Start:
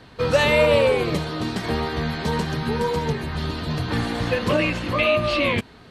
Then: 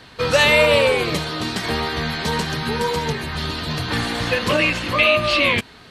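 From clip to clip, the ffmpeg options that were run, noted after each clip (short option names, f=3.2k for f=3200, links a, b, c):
-af "tiltshelf=f=1.1k:g=-4.5,volume=3.5dB"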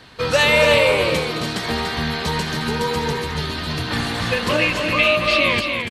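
-af "aecho=1:1:215.7|288.6:0.251|0.501,volume=-1dB"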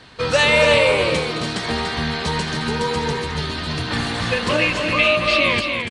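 -af "aresample=22050,aresample=44100"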